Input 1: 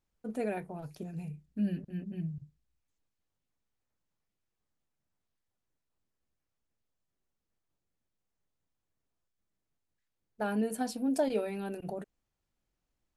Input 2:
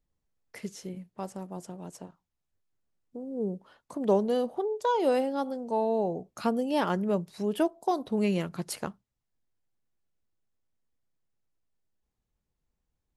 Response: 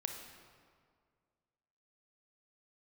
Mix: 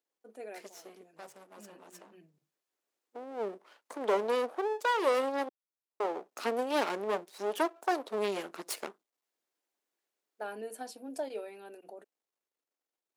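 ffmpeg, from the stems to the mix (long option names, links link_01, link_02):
-filter_complex "[0:a]volume=-9dB[link_01];[1:a]aeval=exprs='max(val(0),0)':channel_layout=same,volume=-1dB,asplit=3[link_02][link_03][link_04];[link_02]atrim=end=5.49,asetpts=PTS-STARTPTS,afade=type=out:start_time=5.486:duration=0.004:curve=hsin[link_05];[link_03]atrim=start=5.49:end=6,asetpts=PTS-STARTPTS,volume=0[link_06];[link_04]atrim=start=6,asetpts=PTS-STARTPTS,afade=type=in:duration=0.004:curve=hsin[link_07];[link_05][link_06][link_07]concat=n=3:v=0:a=1,asplit=2[link_08][link_09];[link_09]apad=whole_len=580629[link_10];[link_01][link_10]sidechaincompress=threshold=-41dB:ratio=8:attack=16:release=744[link_11];[link_11][link_08]amix=inputs=2:normalize=0,highpass=frequency=330:width=0.5412,highpass=frequency=330:width=1.3066,dynaudnorm=framelen=230:gausssize=21:maxgain=5dB"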